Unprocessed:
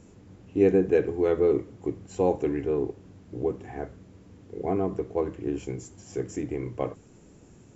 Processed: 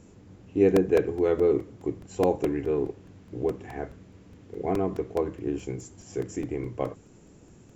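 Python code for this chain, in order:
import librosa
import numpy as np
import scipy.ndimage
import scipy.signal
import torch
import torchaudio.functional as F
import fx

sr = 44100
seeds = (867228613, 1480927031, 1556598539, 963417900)

y = fx.peak_eq(x, sr, hz=2300.0, db=3.0, octaves=1.6, at=(2.67, 5.14))
y = fx.buffer_crackle(y, sr, first_s=0.76, period_s=0.21, block=128, kind='repeat')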